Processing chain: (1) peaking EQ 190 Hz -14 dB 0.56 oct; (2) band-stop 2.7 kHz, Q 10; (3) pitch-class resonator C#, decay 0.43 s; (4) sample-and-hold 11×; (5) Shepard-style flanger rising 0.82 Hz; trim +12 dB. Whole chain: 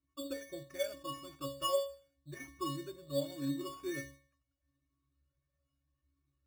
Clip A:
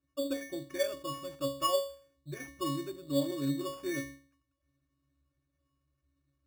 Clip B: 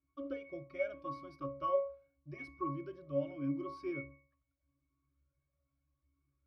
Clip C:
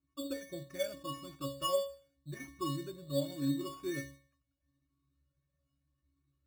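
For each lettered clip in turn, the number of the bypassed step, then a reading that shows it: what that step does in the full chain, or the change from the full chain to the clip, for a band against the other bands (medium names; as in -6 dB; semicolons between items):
5, 250 Hz band +1.5 dB; 4, distortion -5 dB; 1, 125 Hz band +4.0 dB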